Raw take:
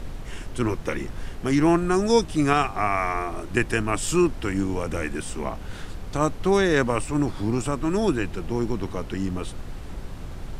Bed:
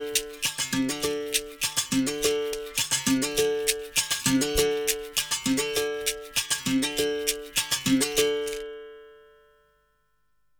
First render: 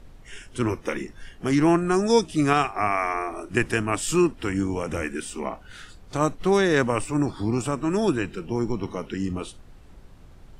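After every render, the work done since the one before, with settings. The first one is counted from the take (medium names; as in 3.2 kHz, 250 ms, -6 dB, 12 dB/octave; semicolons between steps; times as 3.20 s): noise print and reduce 13 dB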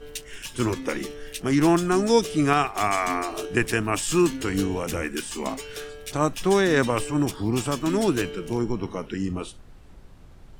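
add bed -10.5 dB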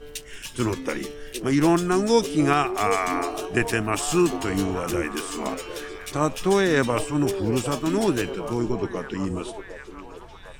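repeats whose band climbs or falls 755 ms, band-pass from 460 Hz, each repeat 0.7 oct, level -7 dB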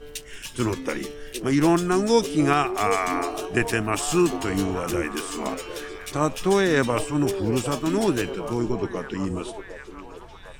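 no audible change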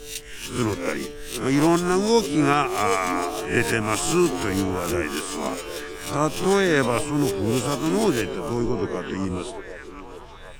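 reverse spectral sustain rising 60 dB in 0.43 s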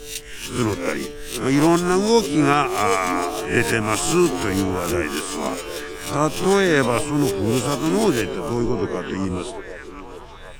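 trim +2.5 dB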